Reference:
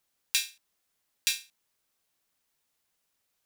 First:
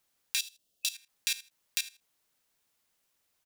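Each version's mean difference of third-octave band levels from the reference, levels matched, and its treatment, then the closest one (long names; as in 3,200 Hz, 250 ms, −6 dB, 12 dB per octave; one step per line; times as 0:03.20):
1.5 dB: single-tap delay 501 ms −4 dB
output level in coarse steps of 16 dB
gain on a spectral selection 0:00.39–0:00.95, 750–2,600 Hz −13 dB
level +3.5 dB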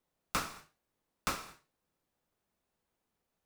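20.0 dB: sub-harmonics by changed cycles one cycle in 2, inverted
tilt shelving filter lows +9 dB, about 1,400 Hz
reverb whose tail is shaped and stops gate 260 ms falling, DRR 7 dB
level −3.5 dB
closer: first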